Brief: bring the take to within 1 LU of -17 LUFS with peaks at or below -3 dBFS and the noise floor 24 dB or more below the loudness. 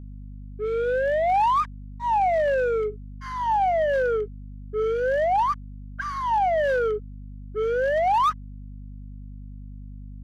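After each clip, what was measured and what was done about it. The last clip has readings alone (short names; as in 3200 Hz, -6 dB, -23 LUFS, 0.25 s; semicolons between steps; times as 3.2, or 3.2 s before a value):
clipped 0.8%; flat tops at -17.0 dBFS; hum 50 Hz; harmonics up to 250 Hz; hum level -36 dBFS; loudness -24.0 LUFS; peak -17.0 dBFS; loudness target -17.0 LUFS
-> clip repair -17 dBFS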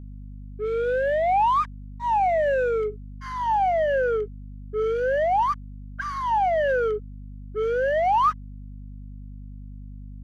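clipped 0.0%; hum 50 Hz; harmonics up to 250 Hz; hum level -36 dBFS
-> de-hum 50 Hz, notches 5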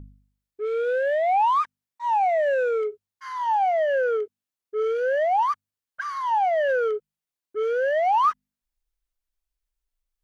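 hum none; loudness -23.5 LUFS; peak -13.5 dBFS; loudness target -17.0 LUFS
-> gain +6.5 dB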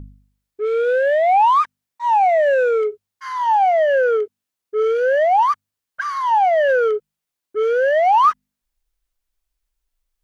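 loudness -17.0 LUFS; peak -7.0 dBFS; noise floor -84 dBFS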